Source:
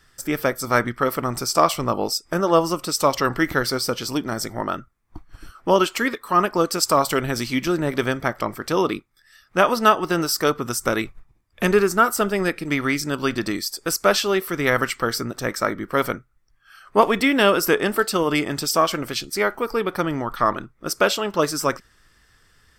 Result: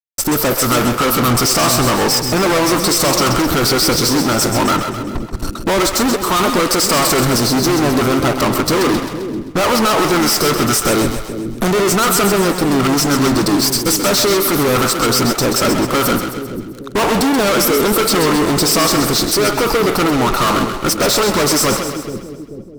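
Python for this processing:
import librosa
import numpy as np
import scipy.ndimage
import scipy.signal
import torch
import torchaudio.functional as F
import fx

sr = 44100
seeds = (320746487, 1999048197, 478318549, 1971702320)

y = scipy.signal.sosfilt(scipy.signal.cheby1(4, 1.0, [1400.0, 3700.0], 'bandstop', fs=sr, output='sos'), x)
y = fx.fuzz(y, sr, gain_db=39.0, gate_db=-44.0)
y = fx.echo_split(y, sr, split_hz=450.0, low_ms=436, high_ms=131, feedback_pct=52, wet_db=-7)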